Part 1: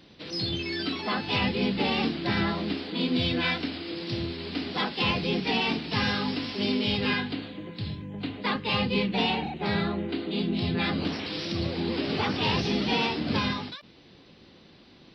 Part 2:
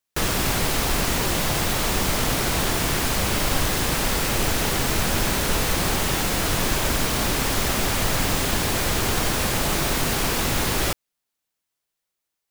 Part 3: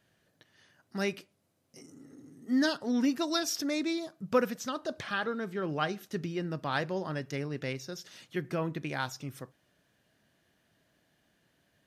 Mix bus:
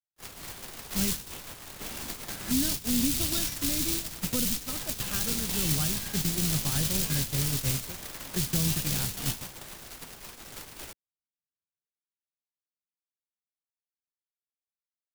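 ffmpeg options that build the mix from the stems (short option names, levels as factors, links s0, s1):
-filter_complex "[0:a]equalizer=f=1600:t=o:w=0.25:g=8.5,volume=0.335[s0];[1:a]aeval=exprs='(mod(7.08*val(0)+1,2)-1)/7.08':c=same,volume=0.631[s1];[2:a]aemphasis=mode=reproduction:type=bsi,volume=1.33,asplit=2[s2][s3];[s3]apad=whole_len=668027[s4];[s0][s4]sidechaingate=range=0.0224:threshold=0.00141:ratio=16:detection=peak[s5];[s5][s1][s2]amix=inputs=3:normalize=0,agate=range=0.00355:threshold=0.0631:ratio=16:detection=peak,acrossover=split=210|3000[s6][s7][s8];[s7]acompressor=threshold=0.01:ratio=6[s9];[s6][s9][s8]amix=inputs=3:normalize=0"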